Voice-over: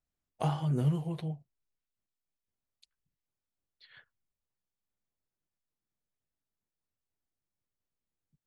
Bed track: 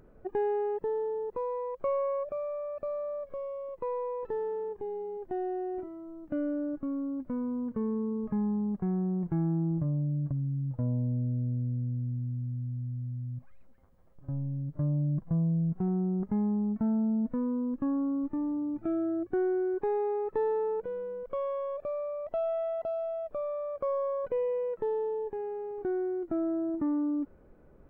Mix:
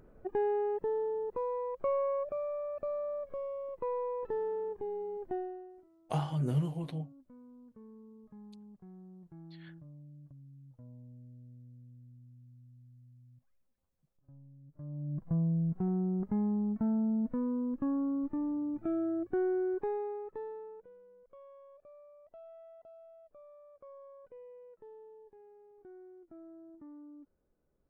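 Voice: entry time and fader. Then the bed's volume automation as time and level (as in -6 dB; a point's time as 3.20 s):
5.70 s, -2.0 dB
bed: 5.33 s -1.5 dB
5.82 s -22 dB
14.60 s -22 dB
15.30 s -2.5 dB
19.73 s -2.5 dB
21.01 s -21.5 dB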